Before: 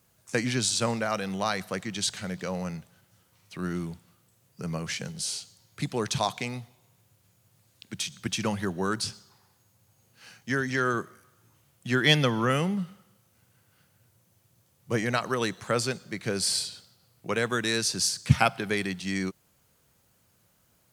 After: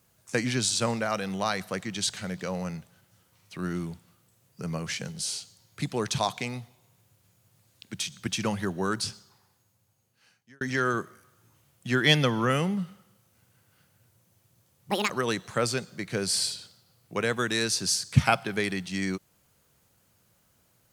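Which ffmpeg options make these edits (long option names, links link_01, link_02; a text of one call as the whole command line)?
ffmpeg -i in.wav -filter_complex "[0:a]asplit=4[link_01][link_02][link_03][link_04];[link_01]atrim=end=10.61,asetpts=PTS-STARTPTS,afade=type=out:start_time=9.1:duration=1.51[link_05];[link_02]atrim=start=10.61:end=14.914,asetpts=PTS-STARTPTS,afade=type=in:duration=0.004:curve=hsin[link_06];[link_03]atrim=start=14.91:end=15.23,asetpts=PTS-STARTPTS,asetrate=75411,aresample=44100[link_07];[link_04]atrim=start=15.226[link_08];[link_05][link_06]concat=n=2:v=0:a=1[link_09];[link_09][link_07]acrossfade=duration=0.004:curve1=hsin:curve2=hsin[link_10];[link_10][link_08]acrossfade=duration=0.004:curve1=hsin:curve2=hsin" out.wav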